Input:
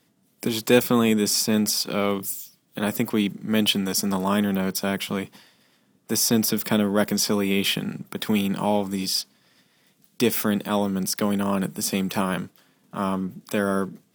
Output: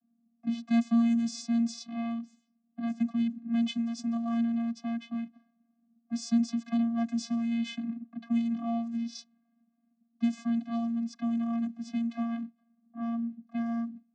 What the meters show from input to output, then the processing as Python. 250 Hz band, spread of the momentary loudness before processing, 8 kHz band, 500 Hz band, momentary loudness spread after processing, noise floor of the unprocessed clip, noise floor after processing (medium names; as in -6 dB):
-4.0 dB, 10 LU, -20.5 dB, -21.0 dB, 10 LU, -65 dBFS, -74 dBFS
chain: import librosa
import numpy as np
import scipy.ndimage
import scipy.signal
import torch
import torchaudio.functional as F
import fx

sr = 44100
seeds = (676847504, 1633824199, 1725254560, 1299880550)

y = fx.env_lowpass(x, sr, base_hz=760.0, full_db=-17.5)
y = fx.high_shelf(y, sr, hz=4600.0, db=10.5)
y = fx.vocoder(y, sr, bands=16, carrier='square', carrier_hz=232.0)
y = y * librosa.db_to_amplitude(-6.5)